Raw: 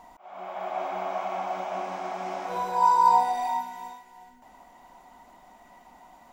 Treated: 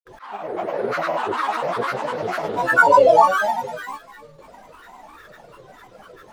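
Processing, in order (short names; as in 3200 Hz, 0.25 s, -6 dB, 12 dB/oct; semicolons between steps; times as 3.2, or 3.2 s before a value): grains, grains 20/s, pitch spread up and down by 12 st; gain +9 dB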